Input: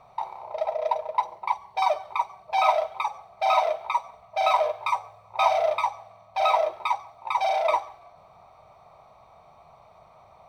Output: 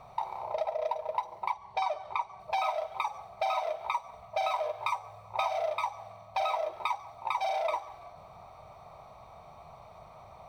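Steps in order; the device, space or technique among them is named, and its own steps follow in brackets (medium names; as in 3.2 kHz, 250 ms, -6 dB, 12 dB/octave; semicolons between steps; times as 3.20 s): 1.52–2.40 s: distance through air 54 m; ASMR close-microphone chain (bass shelf 190 Hz +5.5 dB; compression 6:1, threshold -30 dBFS, peak gain reduction 14.5 dB; treble shelf 6.1 kHz +4 dB); trim +1.5 dB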